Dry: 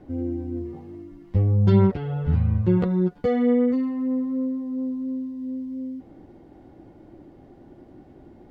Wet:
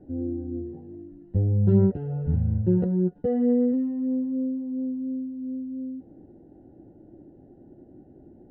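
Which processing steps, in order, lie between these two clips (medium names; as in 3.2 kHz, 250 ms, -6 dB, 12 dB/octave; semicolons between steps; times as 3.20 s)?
boxcar filter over 39 samples; bass shelf 80 Hz -7 dB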